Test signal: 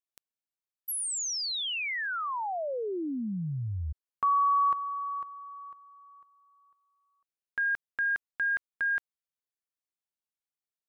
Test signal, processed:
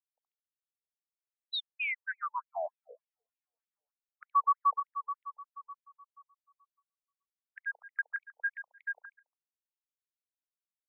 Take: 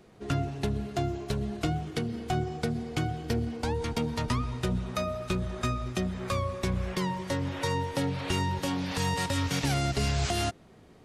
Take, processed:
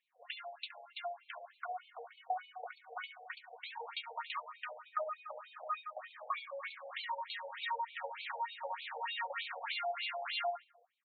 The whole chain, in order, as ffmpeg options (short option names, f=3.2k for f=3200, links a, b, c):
-filter_complex "[0:a]afftdn=nr=16:nf=-50,acrossover=split=590|860[a][b][c];[a]acompressor=threshold=-42dB:ratio=6:attack=0.12:release=559:knee=1:detection=peak[d];[d][b][c]amix=inputs=3:normalize=0,asplit=2[e][f];[f]adelay=70,lowpass=f=2.5k:p=1,volume=-6.5dB,asplit=2[g][h];[h]adelay=70,lowpass=f=2.5k:p=1,volume=0.42,asplit=2[i][j];[j]adelay=70,lowpass=f=2.5k:p=1,volume=0.42,asplit=2[k][l];[l]adelay=70,lowpass=f=2.5k:p=1,volume=0.42,asplit=2[m][n];[n]adelay=70,lowpass=f=2.5k:p=1,volume=0.42[o];[e][g][i][k][m][o]amix=inputs=6:normalize=0,afftfilt=real='re*between(b*sr/1024,610*pow(3200/610,0.5+0.5*sin(2*PI*3.3*pts/sr))/1.41,610*pow(3200/610,0.5+0.5*sin(2*PI*3.3*pts/sr))*1.41)':imag='im*between(b*sr/1024,610*pow(3200/610,0.5+0.5*sin(2*PI*3.3*pts/sr))/1.41,610*pow(3200/610,0.5+0.5*sin(2*PI*3.3*pts/sr))*1.41)':win_size=1024:overlap=0.75"